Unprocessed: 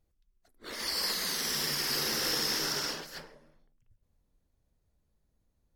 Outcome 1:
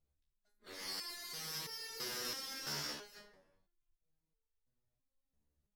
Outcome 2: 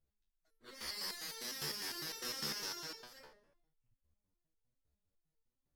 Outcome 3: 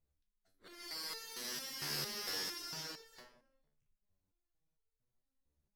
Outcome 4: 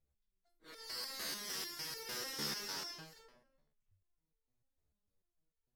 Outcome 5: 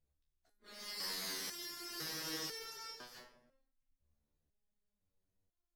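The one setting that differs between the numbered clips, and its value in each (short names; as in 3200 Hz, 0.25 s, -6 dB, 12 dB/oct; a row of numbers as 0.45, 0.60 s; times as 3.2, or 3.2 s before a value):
stepped resonator, rate: 3, 9.9, 4.4, 6.7, 2 Hz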